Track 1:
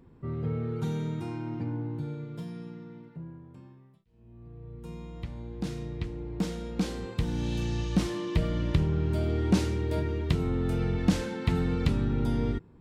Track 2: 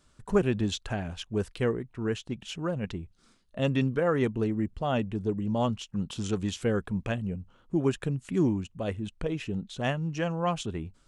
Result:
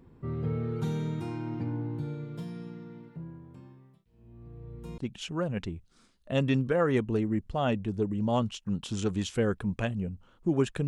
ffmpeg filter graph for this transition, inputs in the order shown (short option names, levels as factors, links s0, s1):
-filter_complex "[0:a]apad=whole_dur=10.87,atrim=end=10.87,atrim=end=4.982[s0];[1:a]atrim=start=2.248:end=8.14[s1];[s0][s1]acrossfade=d=0.004:c1=hsin:c2=hsin"